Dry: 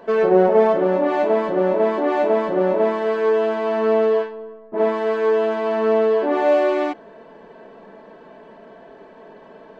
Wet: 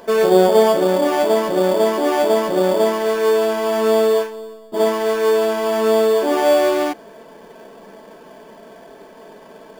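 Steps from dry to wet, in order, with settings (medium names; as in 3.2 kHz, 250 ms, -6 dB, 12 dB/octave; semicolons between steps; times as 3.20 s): treble shelf 2.9 kHz +12 dB; in parallel at -3.5 dB: sample-rate reducer 4 kHz, jitter 0%; on the sum: trim -2.5 dB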